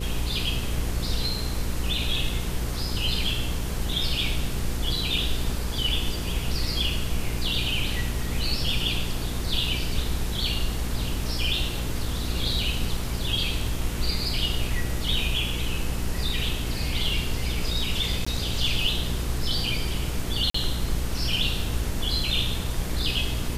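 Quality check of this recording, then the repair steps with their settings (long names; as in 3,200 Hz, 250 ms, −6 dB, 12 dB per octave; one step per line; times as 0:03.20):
mains hum 60 Hz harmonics 8 −31 dBFS
0:18.25–0:18.27: drop-out 15 ms
0:20.50–0:20.54: drop-out 44 ms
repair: hum removal 60 Hz, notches 8
repair the gap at 0:18.25, 15 ms
repair the gap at 0:20.50, 44 ms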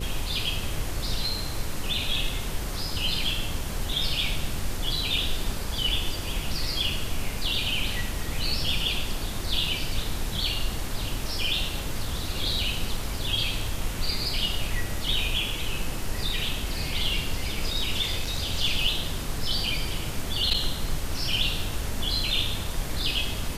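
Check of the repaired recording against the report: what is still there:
none of them is left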